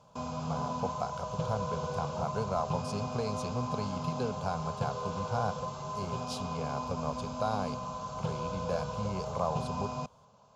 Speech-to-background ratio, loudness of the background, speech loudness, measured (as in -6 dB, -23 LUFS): 0.0 dB, -37.5 LUFS, -37.5 LUFS